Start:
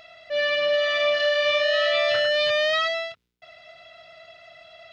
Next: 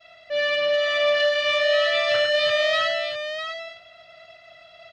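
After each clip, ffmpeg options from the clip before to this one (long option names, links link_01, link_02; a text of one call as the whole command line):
ffmpeg -i in.wav -af "agate=range=-33dB:threshold=-45dB:ratio=3:detection=peak,acontrast=84,aecho=1:1:654:0.376,volume=-6.5dB" out.wav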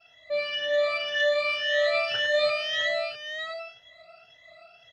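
ffmpeg -i in.wav -af "afftfilt=real='re*pow(10,19/40*sin(2*PI*(1.1*log(max(b,1)*sr/1024/100)/log(2)-(1.9)*(pts-256)/sr)))':imag='im*pow(10,19/40*sin(2*PI*(1.1*log(max(b,1)*sr/1024/100)/log(2)-(1.9)*(pts-256)/sr)))':win_size=1024:overlap=0.75,volume=-8.5dB" out.wav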